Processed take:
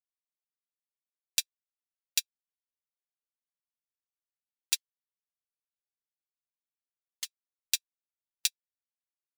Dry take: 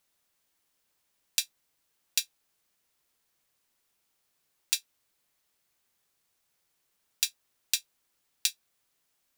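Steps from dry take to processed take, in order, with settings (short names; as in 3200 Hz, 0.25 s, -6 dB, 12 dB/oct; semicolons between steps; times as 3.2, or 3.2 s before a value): 4.76–7.25 ring modulator 560 Hz; upward expander 2.5:1, over -46 dBFS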